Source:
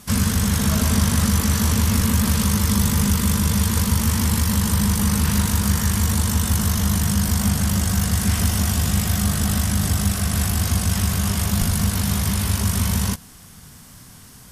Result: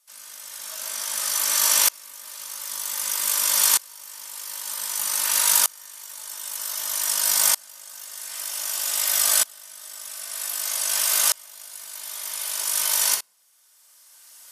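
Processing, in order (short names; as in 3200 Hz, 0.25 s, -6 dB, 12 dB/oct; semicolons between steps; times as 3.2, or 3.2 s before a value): HPF 550 Hz 24 dB/oct; high shelf 2900 Hz +10.5 dB; shoebox room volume 2700 m³, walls furnished, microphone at 2.6 m; dB-ramp tremolo swelling 0.53 Hz, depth 29 dB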